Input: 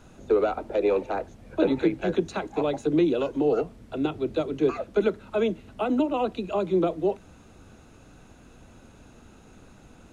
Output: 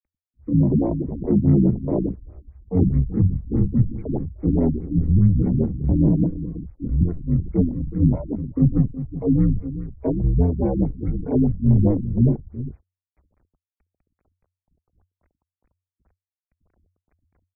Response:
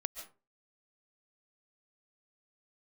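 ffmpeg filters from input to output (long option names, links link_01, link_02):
-filter_complex "[0:a]highshelf=frequency=3700:gain=-5.5,acrossover=split=100|430|3400[link_01][link_02][link_03][link_04];[link_01]acontrast=63[link_05];[link_05][link_02][link_03][link_04]amix=inputs=4:normalize=0,asplit=2[link_06][link_07];[link_07]asetrate=66075,aresample=44100,atempo=0.66742,volume=-4dB[link_08];[link_06][link_08]amix=inputs=2:normalize=0,aecho=1:1:212:0.224,agate=range=-33dB:threshold=-34dB:ratio=3:detection=peak,acrusher=bits=8:mix=0:aa=0.000001,afreqshift=-160,afwtdn=0.0355,asetrate=25442,aresample=44100,dynaudnorm=framelen=360:gausssize=3:maxgain=12dB,afftfilt=real='re*lt(b*sr/1024,300*pow(2600/300,0.5+0.5*sin(2*PI*4.8*pts/sr)))':imag='im*lt(b*sr/1024,300*pow(2600/300,0.5+0.5*sin(2*PI*4.8*pts/sr)))':win_size=1024:overlap=0.75,volume=-4dB"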